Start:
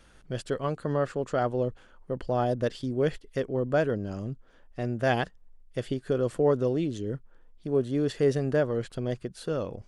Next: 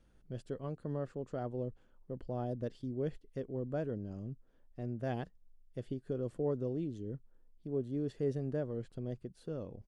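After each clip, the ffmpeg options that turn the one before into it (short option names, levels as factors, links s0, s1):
-af "firequalizer=gain_entry='entry(230,0);entry(560,-5);entry(1300,-11)':delay=0.05:min_phase=1,volume=0.398"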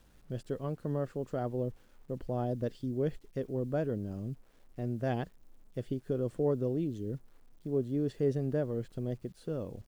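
-af "acrusher=bits=11:mix=0:aa=0.000001,volume=1.68"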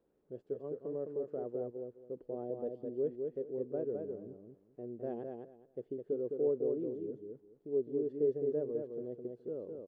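-filter_complex "[0:a]bandpass=f=420:t=q:w=3:csg=0,asplit=2[s0][s1];[s1]aecho=0:1:210|420|630:0.596|0.119|0.0238[s2];[s0][s2]amix=inputs=2:normalize=0"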